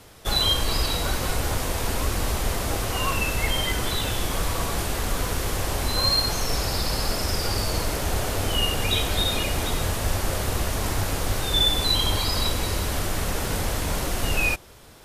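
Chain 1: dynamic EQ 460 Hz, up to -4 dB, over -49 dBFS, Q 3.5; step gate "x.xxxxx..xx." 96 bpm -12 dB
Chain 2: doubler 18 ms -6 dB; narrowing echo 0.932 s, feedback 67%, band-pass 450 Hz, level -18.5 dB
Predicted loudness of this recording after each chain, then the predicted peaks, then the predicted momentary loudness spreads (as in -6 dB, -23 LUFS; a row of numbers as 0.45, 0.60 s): -26.0, -23.5 LUFS; -9.5, -8.0 dBFS; 10, 6 LU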